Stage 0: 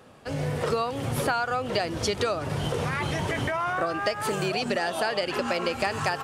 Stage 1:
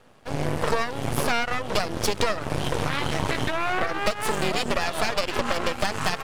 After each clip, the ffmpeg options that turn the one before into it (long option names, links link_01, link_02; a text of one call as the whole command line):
ffmpeg -i in.wav -af "aeval=exprs='0.316*(cos(1*acos(clip(val(0)/0.316,-1,1)))-cos(1*PI/2))+0.1*(cos(6*acos(clip(val(0)/0.316,-1,1)))-cos(6*PI/2))':channel_layout=same,aeval=exprs='max(val(0),0)':channel_layout=same" out.wav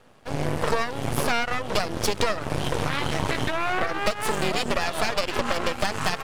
ffmpeg -i in.wav -af anull out.wav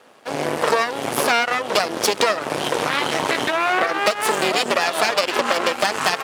ffmpeg -i in.wav -af "highpass=310,volume=7dB" out.wav